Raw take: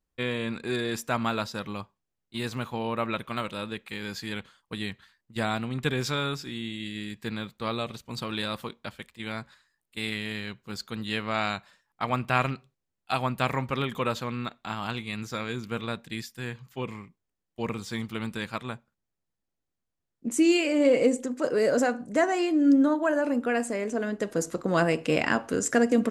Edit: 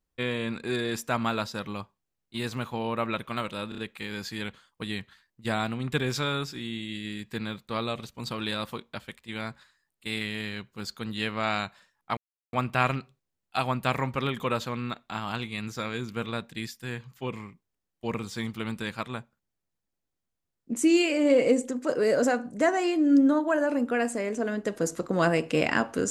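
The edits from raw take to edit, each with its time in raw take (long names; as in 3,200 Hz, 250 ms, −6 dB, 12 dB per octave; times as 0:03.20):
0:03.69: stutter 0.03 s, 4 plays
0:12.08: splice in silence 0.36 s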